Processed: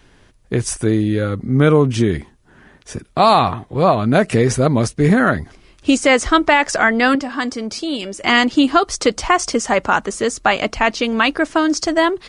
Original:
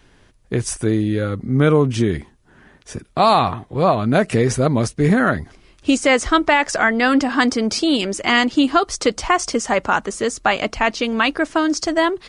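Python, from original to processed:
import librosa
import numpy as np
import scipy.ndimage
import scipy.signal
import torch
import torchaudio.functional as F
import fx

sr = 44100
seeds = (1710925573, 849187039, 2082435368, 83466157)

y = fx.comb_fb(x, sr, f0_hz=570.0, decay_s=0.22, harmonics='all', damping=0.0, mix_pct=60, at=(7.15, 8.23))
y = y * librosa.db_to_amplitude(2.0)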